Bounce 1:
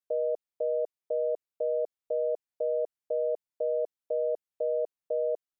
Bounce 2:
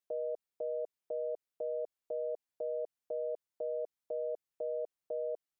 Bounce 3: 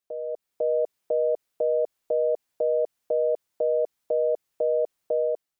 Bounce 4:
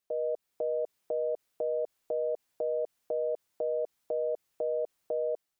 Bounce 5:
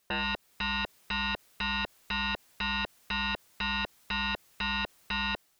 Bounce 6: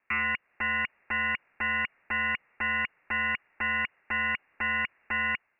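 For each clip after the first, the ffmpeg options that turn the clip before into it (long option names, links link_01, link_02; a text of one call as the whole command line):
ffmpeg -i in.wav -af "alimiter=level_in=6dB:limit=-24dB:level=0:latency=1:release=62,volume=-6dB" out.wav
ffmpeg -i in.wav -af "dynaudnorm=framelen=130:gausssize=7:maxgain=10dB,volume=3dB" out.wav
ffmpeg -i in.wav -af "alimiter=level_in=1.5dB:limit=-24dB:level=0:latency=1:release=47,volume=-1.5dB,volume=1dB" out.wav
ffmpeg -i in.wav -af "aeval=exprs='0.0631*sin(PI/2*5.01*val(0)/0.0631)':channel_layout=same,volume=-3.5dB" out.wav
ffmpeg -i in.wav -af "highpass=54,equalizer=frequency=930:width_type=o:width=1.2:gain=8.5,lowpass=frequency=2500:width_type=q:width=0.5098,lowpass=frequency=2500:width_type=q:width=0.6013,lowpass=frequency=2500:width_type=q:width=0.9,lowpass=frequency=2500:width_type=q:width=2.563,afreqshift=-2900" out.wav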